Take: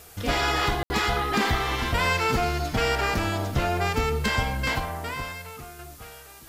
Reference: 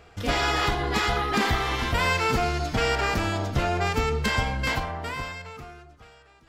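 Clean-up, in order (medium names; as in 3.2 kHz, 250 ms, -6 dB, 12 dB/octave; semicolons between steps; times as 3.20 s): clip repair -13 dBFS; room tone fill 0.83–0.90 s; noise print and reduce 6 dB; trim 0 dB, from 5.79 s -6.5 dB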